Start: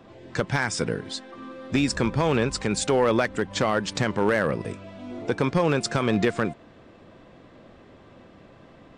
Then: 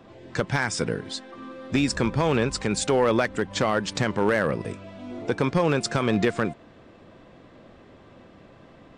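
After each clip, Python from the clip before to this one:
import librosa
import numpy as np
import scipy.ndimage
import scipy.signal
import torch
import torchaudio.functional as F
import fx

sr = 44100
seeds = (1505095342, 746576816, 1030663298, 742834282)

y = x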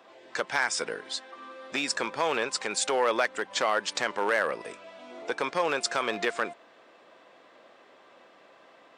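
y = scipy.signal.sosfilt(scipy.signal.butter(2, 600.0, 'highpass', fs=sr, output='sos'), x)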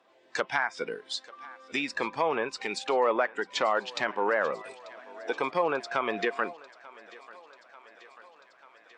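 y = fx.noise_reduce_blind(x, sr, reduce_db=11)
y = fx.env_lowpass_down(y, sr, base_hz=1600.0, full_db=-23.5)
y = fx.echo_thinned(y, sr, ms=890, feedback_pct=73, hz=430.0, wet_db=-20.0)
y = y * 10.0 ** (1.0 / 20.0)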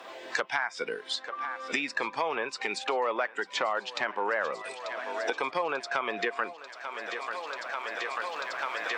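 y = fx.recorder_agc(x, sr, target_db=-18.5, rise_db_per_s=8.4, max_gain_db=30)
y = fx.low_shelf(y, sr, hz=400.0, db=-9.0)
y = fx.band_squash(y, sr, depth_pct=70)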